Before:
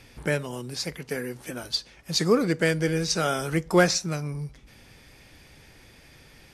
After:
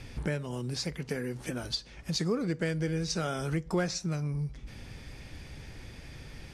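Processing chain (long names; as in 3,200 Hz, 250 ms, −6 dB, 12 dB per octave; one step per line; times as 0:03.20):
low-pass filter 9,300 Hz 12 dB per octave
low-shelf EQ 210 Hz +9.5 dB
downward compressor 2.5 to 1, threshold −35 dBFS, peak gain reduction 15.5 dB
level +1.5 dB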